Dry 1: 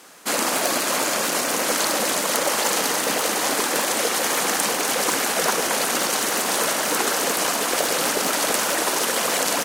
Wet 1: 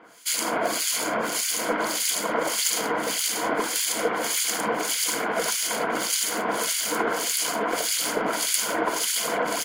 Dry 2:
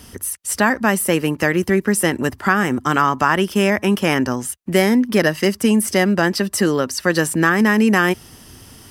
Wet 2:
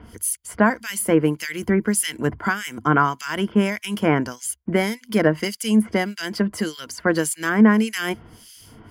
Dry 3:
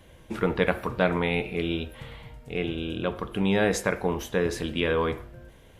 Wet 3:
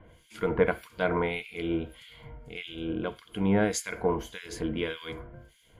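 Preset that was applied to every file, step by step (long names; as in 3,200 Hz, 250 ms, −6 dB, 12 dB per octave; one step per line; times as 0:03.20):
EQ curve with evenly spaced ripples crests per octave 1.8, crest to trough 8 dB
two-band tremolo in antiphase 1.7 Hz, depth 100%, crossover 2,100 Hz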